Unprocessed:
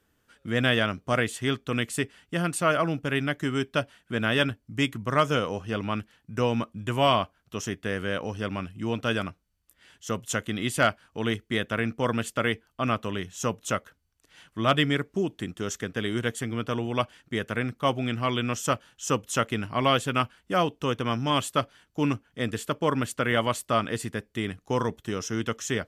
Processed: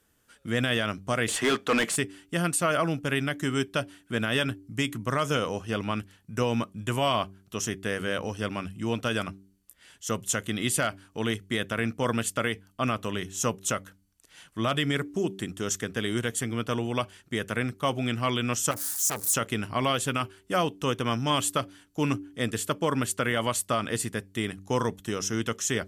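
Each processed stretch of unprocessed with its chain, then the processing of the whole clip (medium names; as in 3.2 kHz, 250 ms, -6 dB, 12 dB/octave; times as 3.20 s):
1.28–1.96 s: high-pass 170 Hz + overdrive pedal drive 24 dB, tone 1.4 kHz, clips at -12 dBFS
18.71–19.34 s: zero-crossing glitches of -27 dBFS + peaking EQ 2.9 kHz -14.5 dB 0.72 oct + transformer saturation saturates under 2.1 kHz
whole clip: peaking EQ 10 kHz +8.5 dB 1.5 oct; de-hum 96.47 Hz, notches 4; peak limiter -15 dBFS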